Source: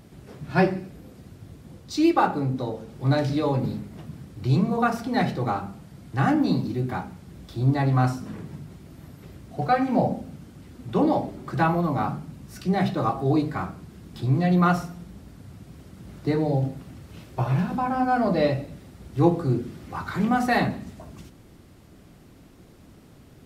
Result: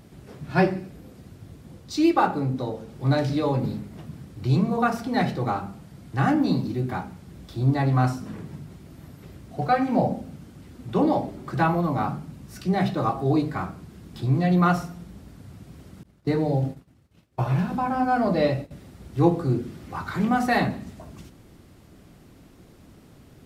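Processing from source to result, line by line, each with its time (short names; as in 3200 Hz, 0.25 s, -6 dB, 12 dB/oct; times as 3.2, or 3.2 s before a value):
16.03–18.71 expander -32 dBFS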